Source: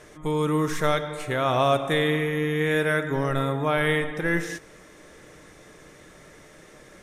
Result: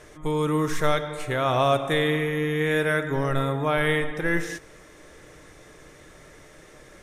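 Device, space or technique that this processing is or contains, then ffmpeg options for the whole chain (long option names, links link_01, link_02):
low shelf boost with a cut just above: -af "lowshelf=frequency=90:gain=5.5,equalizer=frequency=200:width_type=o:width=0.54:gain=-5"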